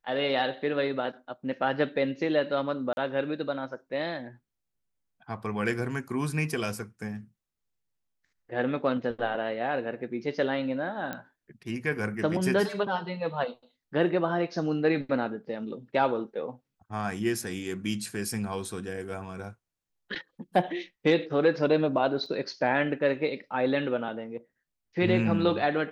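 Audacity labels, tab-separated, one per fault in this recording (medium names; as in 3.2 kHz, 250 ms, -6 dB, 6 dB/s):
2.930000	2.970000	dropout 41 ms
11.130000	11.130000	pop -19 dBFS
22.260000	22.260000	dropout 3.4 ms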